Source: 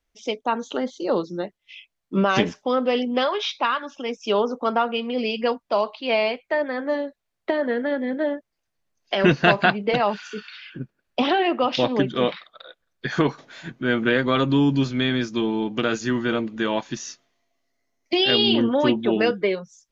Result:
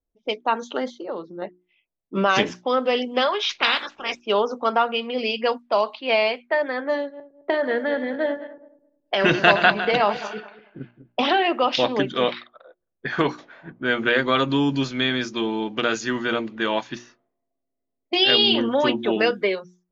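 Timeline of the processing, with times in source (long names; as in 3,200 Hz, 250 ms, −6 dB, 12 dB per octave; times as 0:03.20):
0:01.01–0:01.42: downward compressor 2 to 1, threshold −33 dBFS
0:03.49–0:04.19: ceiling on every frequency bin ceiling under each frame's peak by 28 dB
0:06.99–0:11.25: feedback delay that plays each chunk backwards 106 ms, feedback 52%, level −11.5 dB
whole clip: low-pass that shuts in the quiet parts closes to 390 Hz, open at −20 dBFS; low-shelf EQ 330 Hz −9 dB; mains-hum notches 60/120/180/240/300/360 Hz; level +3 dB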